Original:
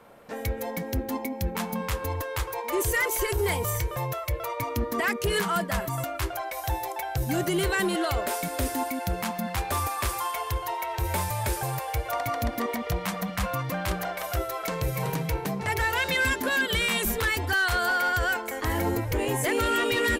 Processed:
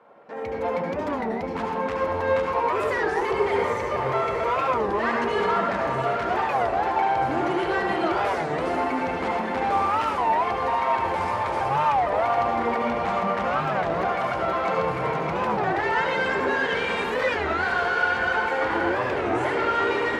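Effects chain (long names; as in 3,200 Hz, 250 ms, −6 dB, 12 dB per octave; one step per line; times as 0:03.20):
reverb reduction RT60 1.8 s
0:01.32–0:01.88: downward compressor, threshold −36 dBFS, peak gain reduction 11.5 dB
brickwall limiter −29 dBFS, peak gain reduction 10.5 dB
automatic gain control gain up to 16 dB
tube saturation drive 23 dB, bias 0.45
resonant band-pass 800 Hz, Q 0.66
high-frequency loss of the air 59 metres
feedback delay with all-pass diffusion 631 ms, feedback 67%, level −8 dB
convolution reverb RT60 0.80 s, pre-delay 67 ms, DRR 0 dB
wow of a warped record 33 1/3 rpm, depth 250 cents
level +1.5 dB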